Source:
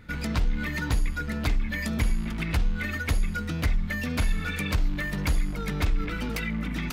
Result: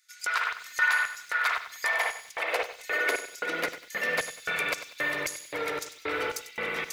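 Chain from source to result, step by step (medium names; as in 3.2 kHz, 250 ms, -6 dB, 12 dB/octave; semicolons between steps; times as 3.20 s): spring tank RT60 2.5 s, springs 54 ms, chirp 30 ms, DRR -2 dB; high-pass sweep 1.3 kHz -> 85 Hz, 1.40–4.88 s; peaking EQ 1.9 kHz +2.5 dB 0.51 oct; LFO high-pass square 1.9 Hz 480–6400 Hz; peaking EQ 220 Hz -13.5 dB 1.1 oct; bit-crushed delay 97 ms, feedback 35%, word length 8-bit, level -12 dB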